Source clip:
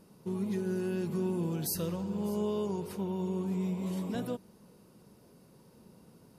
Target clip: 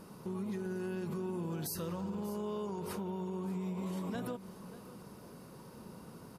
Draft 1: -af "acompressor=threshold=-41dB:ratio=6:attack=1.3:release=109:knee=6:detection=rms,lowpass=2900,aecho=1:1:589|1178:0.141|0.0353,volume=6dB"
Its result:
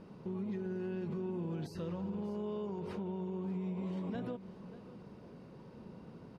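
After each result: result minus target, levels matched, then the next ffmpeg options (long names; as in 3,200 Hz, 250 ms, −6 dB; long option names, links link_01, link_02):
4,000 Hz band −6.5 dB; 1,000 Hz band −4.0 dB
-af "acompressor=threshold=-41dB:ratio=6:attack=1.3:release=109:knee=6:detection=rms,aecho=1:1:589|1178:0.141|0.0353,volume=6dB"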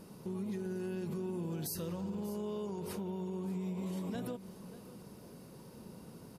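1,000 Hz band −4.0 dB
-af "acompressor=threshold=-41dB:ratio=6:attack=1.3:release=109:knee=6:detection=rms,equalizer=frequency=1200:width=1.3:gain=6.5,aecho=1:1:589|1178:0.141|0.0353,volume=6dB"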